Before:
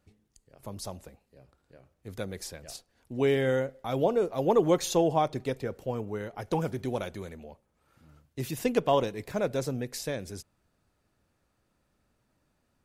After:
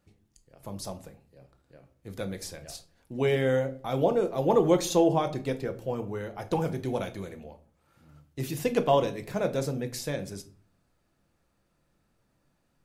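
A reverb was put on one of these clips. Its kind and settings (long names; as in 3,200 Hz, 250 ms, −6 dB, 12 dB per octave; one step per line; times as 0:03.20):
rectangular room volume 320 cubic metres, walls furnished, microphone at 0.76 metres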